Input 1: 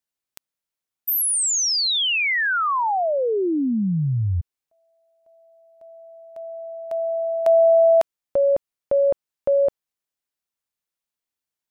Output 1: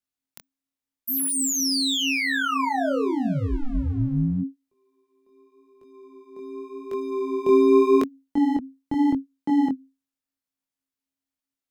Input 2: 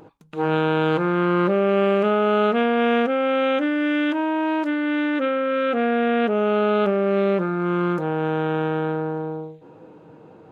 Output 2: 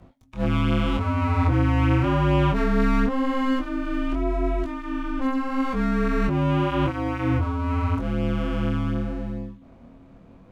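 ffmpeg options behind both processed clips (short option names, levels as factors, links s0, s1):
-af "aeval=exprs='if(lt(val(0),0),0.251*val(0),val(0))':c=same,afreqshift=-270,flanger=delay=19.5:depth=6.8:speed=0.85,volume=1.41"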